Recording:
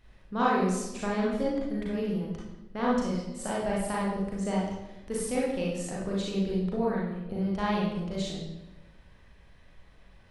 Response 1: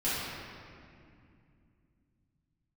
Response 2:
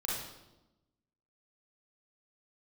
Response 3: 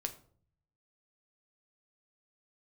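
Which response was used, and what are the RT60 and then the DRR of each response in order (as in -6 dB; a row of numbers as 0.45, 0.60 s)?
2; 2.4, 1.0, 0.50 s; -12.5, -5.5, 5.5 dB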